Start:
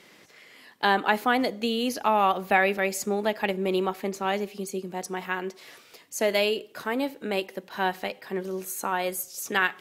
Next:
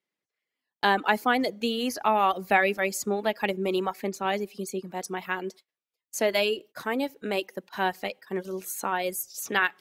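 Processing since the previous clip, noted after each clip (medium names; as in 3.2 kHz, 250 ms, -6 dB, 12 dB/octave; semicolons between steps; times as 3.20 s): gate -42 dBFS, range -34 dB; reverb removal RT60 0.62 s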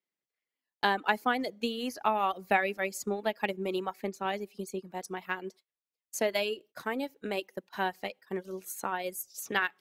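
transient shaper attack +4 dB, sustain -3 dB; trim -6.5 dB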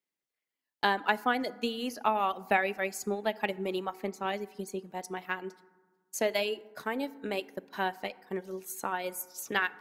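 FDN reverb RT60 1.4 s, low-frequency decay 1.35×, high-frequency decay 0.4×, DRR 17 dB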